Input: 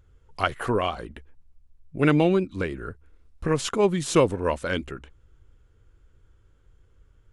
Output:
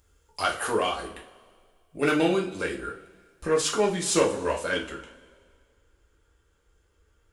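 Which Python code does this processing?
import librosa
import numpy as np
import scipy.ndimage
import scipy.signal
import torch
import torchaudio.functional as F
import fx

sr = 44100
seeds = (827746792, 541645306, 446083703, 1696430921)

y = fx.bass_treble(x, sr, bass_db=-10, treble_db=fx.steps((0.0, 12.0), (3.46, 5.0)))
y = 10.0 ** (-12.5 / 20.0) * np.tanh(y / 10.0 ** (-12.5 / 20.0))
y = fx.rev_double_slope(y, sr, seeds[0], early_s=0.33, late_s=1.9, knee_db=-20, drr_db=-2.0)
y = y * 10.0 ** (-3.0 / 20.0)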